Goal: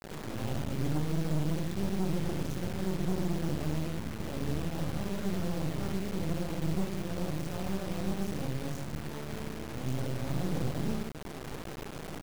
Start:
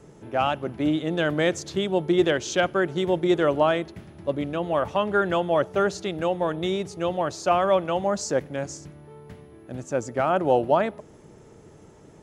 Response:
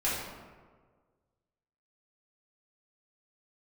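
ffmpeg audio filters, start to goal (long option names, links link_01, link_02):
-filter_complex "[0:a]acrossover=split=490|3000[link_01][link_02][link_03];[link_02]acompressor=threshold=-59dB:ratio=1.5[link_04];[link_01][link_04][link_03]amix=inputs=3:normalize=0,acrusher=bits=6:mode=log:mix=0:aa=0.000001,equalizer=frequency=83:width_type=o:width=1.5:gain=-8,acrossover=split=180[link_05][link_06];[link_06]acompressor=threshold=-48dB:ratio=10[link_07];[link_05][link_07]amix=inputs=2:normalize=0,bass=frequency=250:gain=6,treble=frequency=4000:gain=-12,asplit=2[link_08][link_09];[link_09]adelay=37,volume=-10.5dB[link_10];[link_08][link_10]amix=inputs=2:normalize=0[link_11];[1:a]atrim=start_sample=2205,afade=type=out:start_time=0.28:duration=0.01,atrim=end_sample=12789[link_12];[link_11][link_12]afir=irnorm=-1:irlink=0,asoftclip=type=tanh:threshold=-22.5dB,acrusher=bits=4:dc=4:mix=0:aa=0.000001,volume=1.5dB"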